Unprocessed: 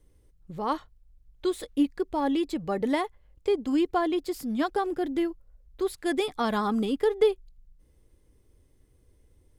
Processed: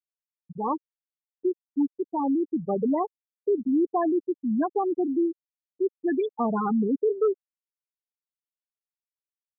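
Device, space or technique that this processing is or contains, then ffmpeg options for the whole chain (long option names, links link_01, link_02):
saturation between pre-emphasis and de-emphasis: -filter_complex "[0:a]highshelf=frequency=4300:gain=10,asoftclip=type=tanh:threshold=-24dB,highshelf=frequency=4300:gain=-10,asettb=1/sr,asplit=3[link_01][link_02][link_03];[link_01]atrim=end=1.494[link_04];[link_02]atrim=start=1.49:end=2.43,asetpts=PTS-STARTPTS,afade=type=in:duration=0.004:curve=qsin,afade=type=out:start_time=0.936:duration=0.004:curve=qsin,equalizer=frequency=125:width_type=o:width=1:gain=5,equalizer=frequency=500:width_type=o:width=1:gain=-5,equalizer=frequency=8000:width_type=o:width=1:gain=10[link_05];[link_03]atrim=start=2.426[link_06];[link_04][link_05]acrossfade=duration=0.004:curve1=hsin:curve2=qsin[link_07];[link_07][link_06]acrossfade=duration=0.004:curve1=qsin:curve2=hsin,afftfilt=real='re*gte(hypot(re,im),0.126)':imag='im*gte(hypot(re,im),0.126)':win_size=1024:overlap=0.75,volume=6dB"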